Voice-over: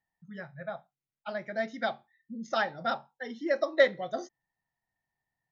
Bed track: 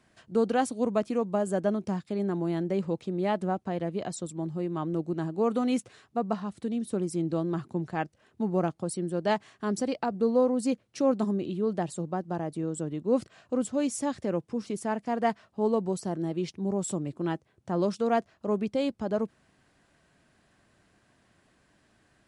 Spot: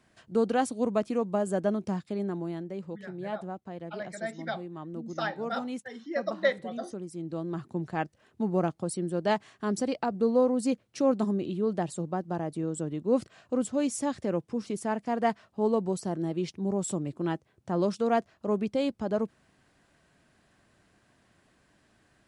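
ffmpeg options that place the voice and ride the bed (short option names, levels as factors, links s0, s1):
-filter_complex "[0:a]adelay=2650,volume=0.668[s0];[1:a]volume=2.66,afade=t=out:st=2.02:d=0.68:silence=0.375837,afade=t=in:st=7.15:d=0.83:silence=0.354813[s1];[s0][s1]amix=inputs=2:normalize=0"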